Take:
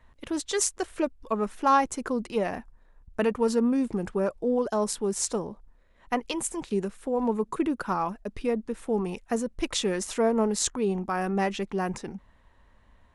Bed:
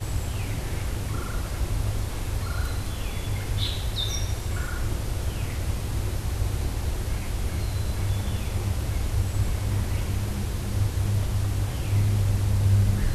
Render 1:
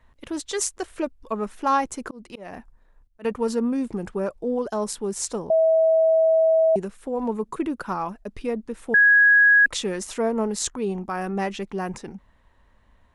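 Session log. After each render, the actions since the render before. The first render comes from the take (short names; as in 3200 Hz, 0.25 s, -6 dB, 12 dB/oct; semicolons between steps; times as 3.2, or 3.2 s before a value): 2.03–3.25 auto swell 0.289 s; 5.5–6.76 bleep 646 Hz -14.5 dBFS; 8.94–9.66 bleep 1660 Hz -11.5 dBFS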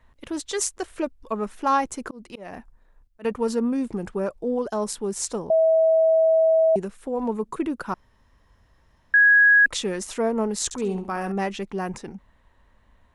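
7.94–9.14 room tone; 10.64–11.32 flutter echo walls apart 11.8 m, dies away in 0.4 s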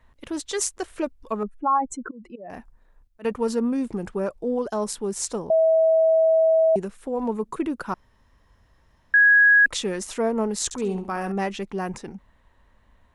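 1.43–2.5 spectral contrast raised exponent 2.2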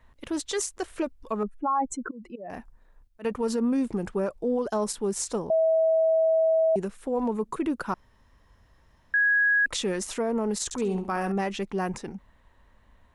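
limiter -18.5 dBFS, peak gain reduction 10.5 dB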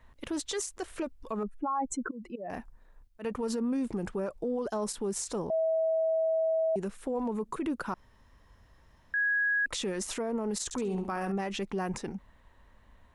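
compressor, threshold -25 dBFS, peak gain reduction 5 dB; limiter -24.5 dBFS, peak gain reduction 5.5 dB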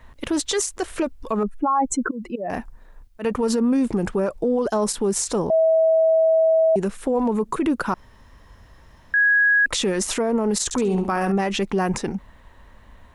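gain +11 dB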